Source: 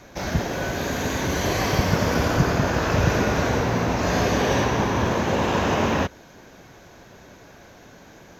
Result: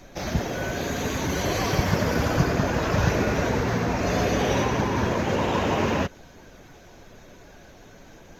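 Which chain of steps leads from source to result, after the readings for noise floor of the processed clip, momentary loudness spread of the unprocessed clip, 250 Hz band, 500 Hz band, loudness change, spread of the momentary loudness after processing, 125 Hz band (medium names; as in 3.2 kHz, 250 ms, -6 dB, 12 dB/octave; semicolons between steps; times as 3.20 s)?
-49 dBFS, 5 LU, -1.5 dB, -1.5 dB, -2.0 dB, 5 LU, -2.0 dB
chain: coarse spectral quantiser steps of 15 dB; added noise brown -51 dBFS; trim -1.5 dB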